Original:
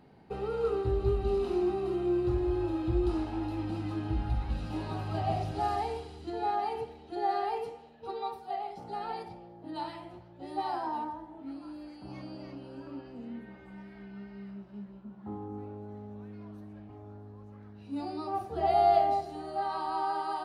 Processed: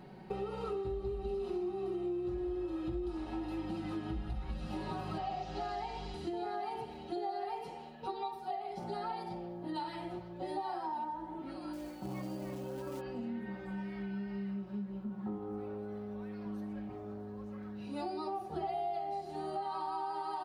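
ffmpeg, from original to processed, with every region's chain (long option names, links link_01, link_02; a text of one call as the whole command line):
ffmpeg -i in.wav -filter_complex "[0:a]asettb=1/sr,asplit=3[link_01][link_02][link_03];[link_01]atrim=end=5.184[link_04];[link_02]atrim=start=5.18:end=6.14,asetpts=PTS-STARTPTS,afade=type=in:duration=0.004:curve=qsin,afade=type=out:start_time=0.956:duration=0.004:curve=qsin,lowshelf=frequency=320:gain=-11,aeval=exprs='val(0)+0.00501*(sin(2*PI*50*n/s)+sin(2*PI*2*50*n/s)/2+sin(2*PI*3*50*n/s)/3+sin(2*PI*4*50*n/s)/4+sin(2*PI*5*50*n/s)/5)':channel_layout=same,lowpass=frequency=6800:width=0.5412,lowpass=frequency=6800:width=1.3066[link_05];[link_03]atrim=start=6.136[link_06];[link_04][link_05]acrossfade=duration=0.004:curve1=hsin:curve2=qsin[link_07];[link_07][link_06]acrossfade=duration=0.004:curve1=qsin:curve2=hsin,asettb=1/sr,asplit=3[link_08][link_09][link_10];[link_08]atrim=end=11.734[link_11];[link_09]atrim=start=11.73:end=13.01,asetpts=PTS-STARTPTS,afade=type=in:duration=0.004:curve=qsin,afade=type=out:start_time=1.276:duration=0.004:curve=qsin,lowpass=frequency=1700:poles=1,acrusher=bits=5:mode=log:mix=0:aa=0.000001[link_12];[link_10]atrim=start=13.006[link_13];[link_11][link_12]acrossfade=duration=0.004:curve1=hsin:curve2=qsin[link_14];[link_14][link_13]acrossfade=duration=0.004:curve1=qsin:curve2=hsin,asettb=1/sr,asplit=3[link_15][link_16][link_17];[link_15]atrim=end=15.384[link_18];[link_16]atrim=start=15.38:end=16.46,asetpts=PTS-STARTPTS,afade=type=in:duration=0.004:curve=qsin,afade=type=out:start_time=1.076:duration=0.004:curve=qsin,equalizer=frequency=220:width=0.95:gain=-5.5,bandreject=frequency=6700:width=5.4[link_19];[link_17]atrim=start=16.456[link_20];[link_18][link_19]acrossfade=duration=0.004:curve1=hsin:curve2=qsin[link_21];[link_21][link_20]acrossfade=duration=0.004:curve1=qsin:curve2=hsin,aecho=1:1:5.4:0.76,acompressor=threshold=-40dB:ratio=6,volume=4dB" out.wav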